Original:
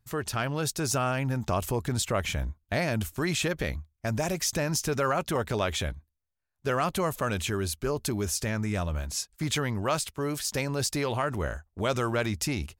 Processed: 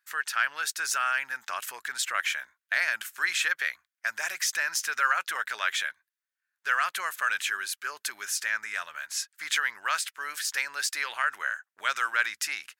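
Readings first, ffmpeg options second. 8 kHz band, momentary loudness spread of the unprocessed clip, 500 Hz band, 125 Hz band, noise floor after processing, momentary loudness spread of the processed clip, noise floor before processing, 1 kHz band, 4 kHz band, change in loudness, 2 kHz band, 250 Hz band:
+0.5 dB, 5 LU, -18.0 dB, under -40 dB, under -85 dBFS, 8 LU, -78 dBFS, +1.0 dB, +1.5 dB, +0.5 dB, +9.0 dB, under -30 dB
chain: -af "highpass=f=1.6k:t=q:w=3.6"

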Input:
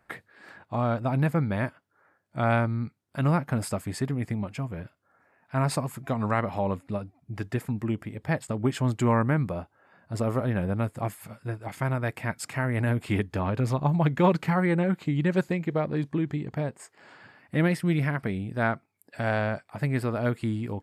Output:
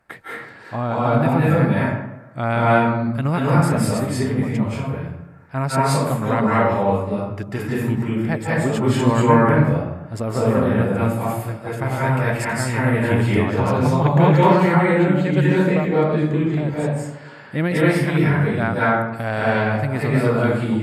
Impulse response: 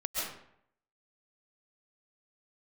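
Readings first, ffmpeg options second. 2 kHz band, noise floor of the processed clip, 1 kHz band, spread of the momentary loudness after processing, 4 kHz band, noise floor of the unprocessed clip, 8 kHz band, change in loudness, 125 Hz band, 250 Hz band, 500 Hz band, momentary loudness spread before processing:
+9.5 dB, -40 dBFS, +10.5 dB, 12 LU, +9.0 dB, -71 dBFS, +8.5 dB, +9.0 dB, +8.0 dB, +9.0 dB, +10.5 dB, 11 LU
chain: -filter_complex "[1:a]atrim=start_sample=2205,asetrate=31752,aresample=44100[a];[0:a][a]afir=irnorm=-1:irlink=0,volume=2dB"

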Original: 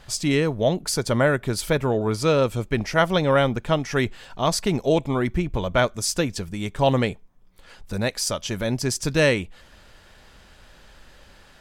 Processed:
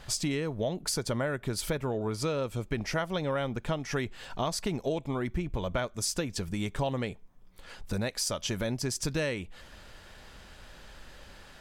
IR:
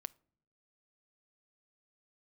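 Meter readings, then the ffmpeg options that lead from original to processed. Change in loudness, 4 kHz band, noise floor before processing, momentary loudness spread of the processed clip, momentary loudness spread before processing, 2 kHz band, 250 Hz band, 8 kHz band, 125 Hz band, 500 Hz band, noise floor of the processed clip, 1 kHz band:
-9.5 dB, -7.5 dB, -51 dBFS, 20 LU, 7 LU, -10.5 dB, -9.0 dB, -5.5 dB, -8.5 dB, -10.5 dB, -52 dBFS, -10.5 dB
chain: -af "acompressor=threshold=-28dB:ratio=6"

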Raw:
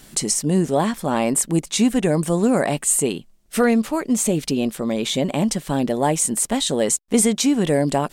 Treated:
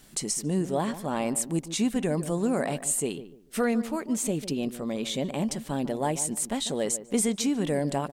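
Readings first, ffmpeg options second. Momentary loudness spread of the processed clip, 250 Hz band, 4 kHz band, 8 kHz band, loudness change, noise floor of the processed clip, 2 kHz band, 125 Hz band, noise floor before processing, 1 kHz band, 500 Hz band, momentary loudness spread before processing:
5 LU, -8.0 dB, -8.5 dB, -8.5 dB, -8.5 dB, -49 dBFS, -8.5 dB, -8.0 dB, -52 dBFS, -8.5 dB, -8.5 dB, 5 LU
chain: -filter_complex "[0:a]asplit=2[a][b];[b]adelay=147,lowpass=f=1k:p=1,volume=-12dB,asplit=2[c][d];[d]adelay=147,lowpass=f=1k:p=1,volume=0.29,asplit=2[e][f];[f]adelay=147,lowpass=f=1k:p=1,volume=0.29[g];[c][e][g]amix=inputs=3:normalize=0[h];[a][h]amix=inputs=2:normalize=0,acrusher=bits=10:mix=0:aa=0.000001,volume=-8.5dB"

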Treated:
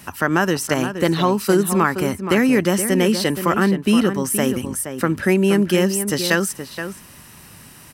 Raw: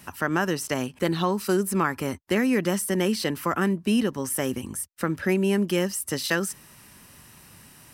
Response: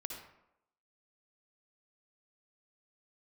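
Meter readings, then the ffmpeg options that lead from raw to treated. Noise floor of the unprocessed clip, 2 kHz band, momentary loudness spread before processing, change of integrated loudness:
-52 dBFS, +7.0 dB, 6 LU, +7.0 dB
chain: -filter_complex "[0:a]asplit=2[a][b];[b]adelay=472.3,volume=-9dB,highshelf=f=4k:g=-10.6[c];[a][c]amix=inputs=2:normalize=0,volume=6.5dB"

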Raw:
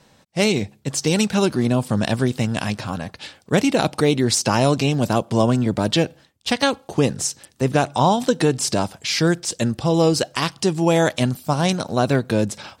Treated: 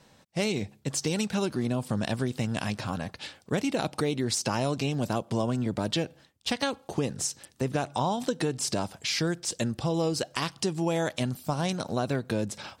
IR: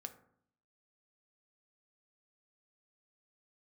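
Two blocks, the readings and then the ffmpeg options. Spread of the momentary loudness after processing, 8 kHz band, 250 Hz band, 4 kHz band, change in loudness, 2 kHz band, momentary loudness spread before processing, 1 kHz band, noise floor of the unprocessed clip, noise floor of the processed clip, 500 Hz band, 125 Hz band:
5 LU, -8.0 dB, -9.5 dB, -8.5 dB, -9.5 dB, -9.5 dB, 7 LU, -10.0 dB, -56 dBFS, -60 dBFS, -10.0 dB, -9.5 dB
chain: -af "acompressor=threshold=-23dB:ratio=2.5,volume=-4dB"

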